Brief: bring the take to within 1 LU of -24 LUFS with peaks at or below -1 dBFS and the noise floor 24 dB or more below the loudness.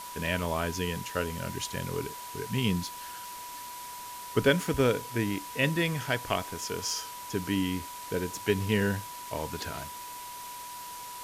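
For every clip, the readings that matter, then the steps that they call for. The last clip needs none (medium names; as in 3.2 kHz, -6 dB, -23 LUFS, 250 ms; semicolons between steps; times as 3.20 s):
steady tone 980 Hz; tone level -41 dBFS; noise floor -42 dBFS; noise floor target -56 dBFS; loudness -31.5 LUFS; peak level -11.0 dBFS; loudness target -24.0 LUFS
-> band-stop 980 Hz, Q 30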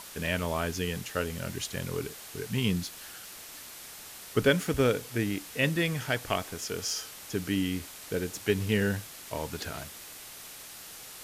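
steady tone not found; noise floor -46 dBFS; noise floor target -55 dBFS
-> noise reduction 9 dB, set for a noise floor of -46 dBFS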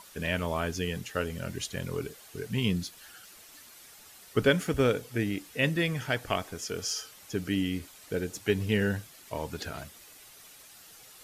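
noise floor -53 dBFS; noise floor target -55 dBFS
-> noise reduction 6 dB, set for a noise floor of -53 dBFS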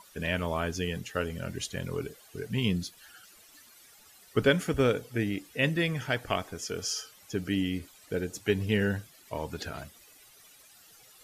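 noise floor -57 dBFS; loudness -31.0 LUFS; peak level -10.5 dBFS; loudness target -24.0 LUFS
-> trim +7 dB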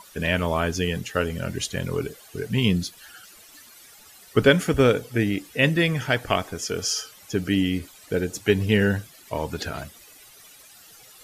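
loudness -24.0 LUFS; peak level -3.5 dBFS; noise floor -50 dBFS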